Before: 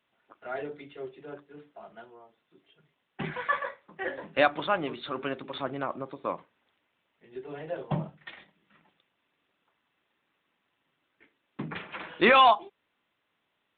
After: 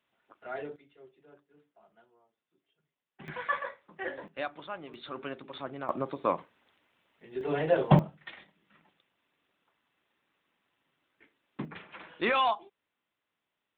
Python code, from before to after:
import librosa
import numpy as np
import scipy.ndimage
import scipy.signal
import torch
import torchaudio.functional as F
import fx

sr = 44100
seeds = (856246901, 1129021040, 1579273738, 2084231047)

y = fx.gain(x, sr, db=fx.steps((0.0, -3.0), (0.76, -15.0), (3.28, -3.0), (4.28, -13.0), (4.94, -6.0), (5.89, 4.0), (7.41, 10.0), (7.99, -1.0), (11.65, -8.0)))